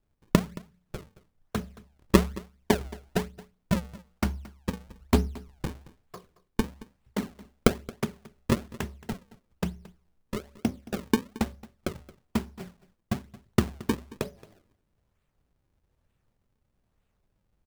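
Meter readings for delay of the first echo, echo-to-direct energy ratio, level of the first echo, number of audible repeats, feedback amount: 223 ms, -20.0 dB, -20.0 dB, 1, no regular repeats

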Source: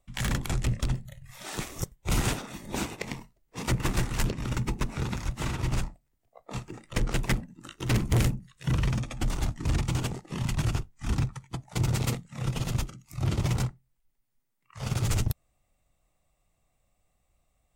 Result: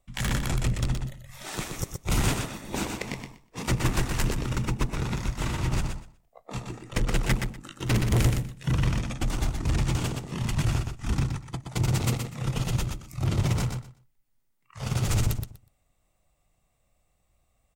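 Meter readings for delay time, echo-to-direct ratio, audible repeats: 122 ms, -5.5 dB, 2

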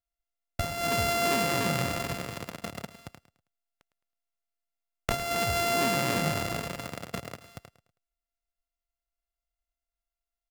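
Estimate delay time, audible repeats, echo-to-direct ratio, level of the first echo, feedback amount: 107 ms, 3, -13.5 dB, -14.0 dB, 33%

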